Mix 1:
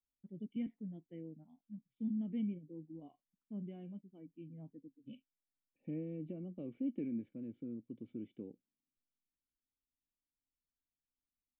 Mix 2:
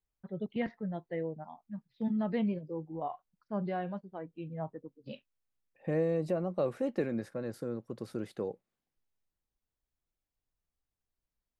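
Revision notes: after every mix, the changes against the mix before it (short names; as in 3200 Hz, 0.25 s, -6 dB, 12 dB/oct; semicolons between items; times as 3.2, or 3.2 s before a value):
master: remove vocal tract filter i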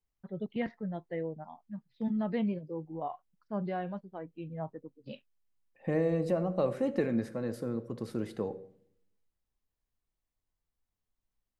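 reverb: on, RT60 0.55 s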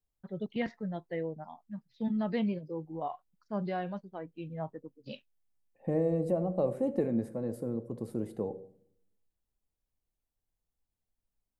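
first voice: remove air absorption 210 m; second voice: add band shelf 2700 Hz -11.5 dB 2.7 oct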